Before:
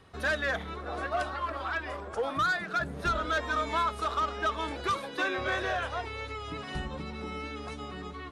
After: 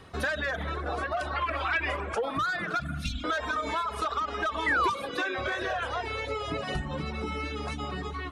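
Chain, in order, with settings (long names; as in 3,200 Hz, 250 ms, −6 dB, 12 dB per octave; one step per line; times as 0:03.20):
0:02.80–0:03.24: linear-phase brick-wall band-stop 290–2,100 Hz
0:06.27–0:06.74: parametric band 550 Hz +12 dB 0.45 octaves
convolution reverb RT60 1.4 s, pre-delay 54 ms, DRR 8 dB
brickwall limiter −23.5 dBFS, peak gain reduction 5.5 dB
downward compressor 5 to 1, threshold −33 dBFS, peak gain reduction 6 dB
0:04.66–0:04.90: sound drawn into the spectrogram fall 900–2,100 Hz −32 dBFS
reverb reduction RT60 0.78 s
0:01.36–0:02.18: parametric band 2,400 Hz +11.5 dB 0.66 octaves
level +7 dB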